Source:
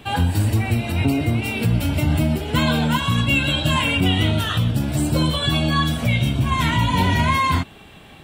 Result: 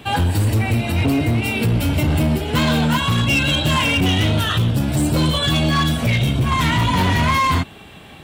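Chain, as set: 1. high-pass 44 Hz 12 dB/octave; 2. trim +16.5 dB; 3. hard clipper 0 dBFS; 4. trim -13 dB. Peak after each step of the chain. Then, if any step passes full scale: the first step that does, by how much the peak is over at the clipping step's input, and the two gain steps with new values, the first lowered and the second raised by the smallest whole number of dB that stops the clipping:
-7.0 dBFS, +9.5 dBFS, 0.0 dBFS, -13.0 dBFS; step 2, 9.5 dB; step 2 +6.5 dB, step 4 -3 dB

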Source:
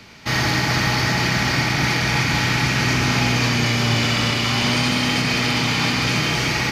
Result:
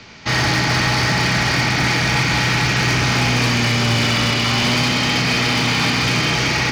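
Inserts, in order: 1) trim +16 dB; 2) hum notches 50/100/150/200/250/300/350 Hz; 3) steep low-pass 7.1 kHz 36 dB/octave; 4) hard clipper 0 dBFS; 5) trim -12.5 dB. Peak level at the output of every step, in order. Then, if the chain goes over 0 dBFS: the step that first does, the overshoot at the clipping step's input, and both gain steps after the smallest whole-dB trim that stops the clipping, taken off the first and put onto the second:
+8.5 dBFS, +8.5 dBFS, +8.5 dBFS, 0.0 dBFS, -12.5 dBFS; step 1, 8.5 dB; step 1 +7 dB, step 5 -3.5 dB

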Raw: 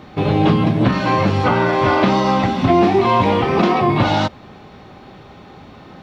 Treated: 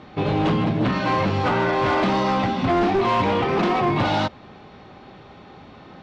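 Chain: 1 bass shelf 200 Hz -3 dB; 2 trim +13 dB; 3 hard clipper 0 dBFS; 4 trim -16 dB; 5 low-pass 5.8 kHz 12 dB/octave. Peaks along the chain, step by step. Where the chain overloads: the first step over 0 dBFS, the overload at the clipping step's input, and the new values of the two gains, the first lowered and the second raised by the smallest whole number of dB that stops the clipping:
-3.0 dBFS, +10.0 dBFS, 0.0 dBFS, -16.0 dBFS, -15.5 dBFS; step 2, 10.0 dB; step 2 +3 dB, step 4 -6 dB

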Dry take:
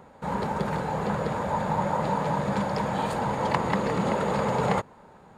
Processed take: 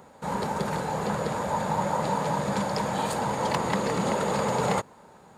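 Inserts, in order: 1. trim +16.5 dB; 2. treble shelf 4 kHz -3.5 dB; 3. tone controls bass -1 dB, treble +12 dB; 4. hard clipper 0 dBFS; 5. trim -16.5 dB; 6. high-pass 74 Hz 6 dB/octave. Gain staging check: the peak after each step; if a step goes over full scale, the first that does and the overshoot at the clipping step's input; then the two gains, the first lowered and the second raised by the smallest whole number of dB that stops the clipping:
+8.0 dBFS, +7.5 dBFS, +8.5 dBFS, 0.0 dBFS, -16.5 dBFS, -15.0 dBFS; step 1, 8.5 dB; step 1 +7.5 dB, step 5 -7.5 dB

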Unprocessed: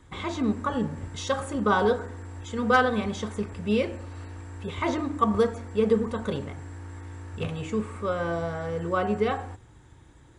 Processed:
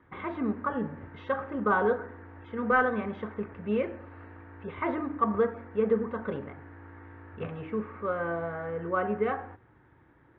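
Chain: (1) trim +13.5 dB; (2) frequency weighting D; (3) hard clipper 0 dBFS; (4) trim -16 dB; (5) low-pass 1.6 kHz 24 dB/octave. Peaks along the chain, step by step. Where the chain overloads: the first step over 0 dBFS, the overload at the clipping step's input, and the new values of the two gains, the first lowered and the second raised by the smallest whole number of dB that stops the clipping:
+3.0 dBFS, +8.0 dBFS, 0.0 dBFS, -16.0 dBFS, -14.5 dBFS; step 1, 8.0 dB; step 1 +5.5 dB, step 4 -8 dB

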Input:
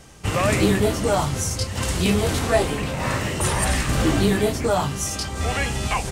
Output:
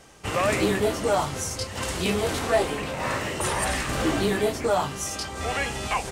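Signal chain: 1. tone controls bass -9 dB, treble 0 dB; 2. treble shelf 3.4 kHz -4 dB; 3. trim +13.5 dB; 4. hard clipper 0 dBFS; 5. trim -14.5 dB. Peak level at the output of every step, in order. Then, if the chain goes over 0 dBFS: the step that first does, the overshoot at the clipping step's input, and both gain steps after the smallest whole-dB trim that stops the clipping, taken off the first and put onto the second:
-7.5 dBFS, -8.0 dBFS, +5.5 dBFS, 0.0 dBFS, -14.5 dBFS; step 3, 5.5 dB; step 3 +7.5 dB, step 5 -8.5 dB

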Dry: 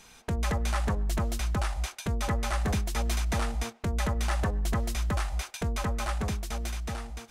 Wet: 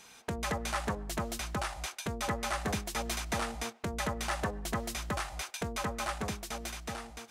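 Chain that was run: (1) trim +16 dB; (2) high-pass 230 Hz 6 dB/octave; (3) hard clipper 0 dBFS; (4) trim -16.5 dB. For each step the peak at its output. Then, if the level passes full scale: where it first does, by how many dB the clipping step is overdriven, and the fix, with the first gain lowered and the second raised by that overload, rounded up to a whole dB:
-1.5 dBFS, -2.5 dBFS, -2.5 dBFS, -19.0 dBFS; nothing clips

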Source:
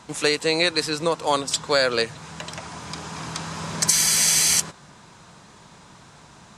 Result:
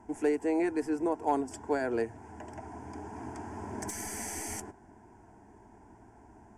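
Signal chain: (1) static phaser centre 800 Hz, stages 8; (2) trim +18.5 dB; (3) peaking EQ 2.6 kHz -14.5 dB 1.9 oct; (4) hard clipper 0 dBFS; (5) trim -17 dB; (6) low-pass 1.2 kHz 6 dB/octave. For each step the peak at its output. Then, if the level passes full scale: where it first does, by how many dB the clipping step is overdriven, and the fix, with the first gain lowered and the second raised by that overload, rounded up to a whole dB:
-8.0 dBFS, +10.5 dBFS, +8.0 dBFS, 0.0 dBFS, -17.0 dBFS, -17.5 dBFS; step 2, 8.0 dB; step 2 +10.5 dB, step 5 -9 dB

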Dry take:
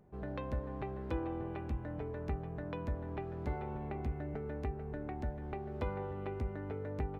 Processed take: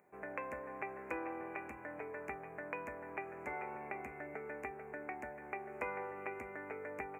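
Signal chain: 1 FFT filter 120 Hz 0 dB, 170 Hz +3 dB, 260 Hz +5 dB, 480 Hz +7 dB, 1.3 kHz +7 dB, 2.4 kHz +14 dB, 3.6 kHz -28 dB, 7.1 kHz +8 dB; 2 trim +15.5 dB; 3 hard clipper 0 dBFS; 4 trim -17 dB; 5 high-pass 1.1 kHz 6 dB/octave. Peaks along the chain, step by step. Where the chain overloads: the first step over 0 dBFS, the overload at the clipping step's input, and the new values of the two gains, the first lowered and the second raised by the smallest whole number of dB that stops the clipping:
-19.5 dBFS, -4.0 dBFS, -4.0 dBFS, -21.0 dBFS, -22.5 dBFS; nothing clips

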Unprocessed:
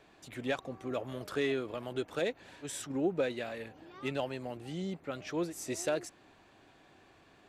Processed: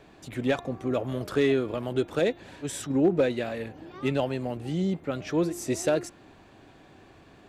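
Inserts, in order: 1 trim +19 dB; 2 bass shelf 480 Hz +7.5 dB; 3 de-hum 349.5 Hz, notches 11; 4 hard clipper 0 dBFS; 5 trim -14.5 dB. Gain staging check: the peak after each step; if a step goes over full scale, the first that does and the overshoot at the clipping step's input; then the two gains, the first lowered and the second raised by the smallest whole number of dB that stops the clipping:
-1.5 dBFS, +2.5 dBFS, +3.0 dBFS, 0.0 dBFS, -14.5 dBFS; step 2, 3.0 dB; step 1 +16 dB, step 5 -11.5 dB

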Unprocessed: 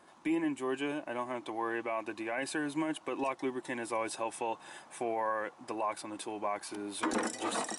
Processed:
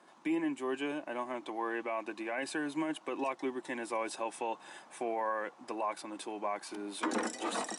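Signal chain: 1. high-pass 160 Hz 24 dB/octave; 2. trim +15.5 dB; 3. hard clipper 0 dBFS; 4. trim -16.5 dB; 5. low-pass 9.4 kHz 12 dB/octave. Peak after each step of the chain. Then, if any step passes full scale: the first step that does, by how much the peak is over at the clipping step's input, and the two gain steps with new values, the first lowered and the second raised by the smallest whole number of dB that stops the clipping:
-20.5 dBFS, -5.0 dBFS, -5.0 dBFS, -21.5 dBFS, -21.5 dBFS; nothing clips

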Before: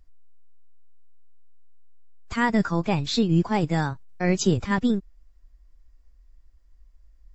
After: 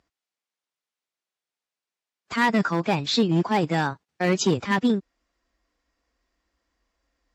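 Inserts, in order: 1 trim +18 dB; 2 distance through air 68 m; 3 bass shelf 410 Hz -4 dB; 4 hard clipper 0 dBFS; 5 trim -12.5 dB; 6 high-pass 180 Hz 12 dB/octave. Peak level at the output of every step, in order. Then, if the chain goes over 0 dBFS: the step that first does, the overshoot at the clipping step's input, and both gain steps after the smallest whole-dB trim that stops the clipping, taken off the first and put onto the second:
+9.5 dBFS, +9.0 dBFS, +8.0 dBFS, 0.0 dBFS, -12.5 dBFS, -9.0 dBFS; step 1, 8.0 dB; step 1 +10 dB, step 5 -4.5 dB

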